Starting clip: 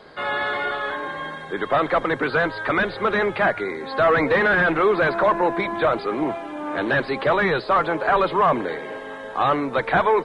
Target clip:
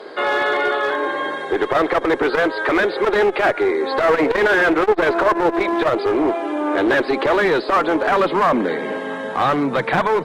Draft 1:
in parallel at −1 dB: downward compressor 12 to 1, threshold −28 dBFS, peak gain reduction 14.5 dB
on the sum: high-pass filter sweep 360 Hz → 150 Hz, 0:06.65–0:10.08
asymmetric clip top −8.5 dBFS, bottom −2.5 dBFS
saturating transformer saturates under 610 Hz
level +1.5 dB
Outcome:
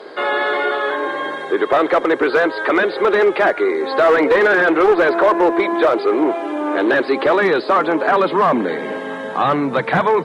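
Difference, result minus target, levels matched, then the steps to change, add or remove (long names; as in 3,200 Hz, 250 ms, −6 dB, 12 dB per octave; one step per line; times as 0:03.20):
asymmetric clip: distortion −10 dB
change: asymmetric clip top −14.5 dBFS, bottom −2.5 dBFS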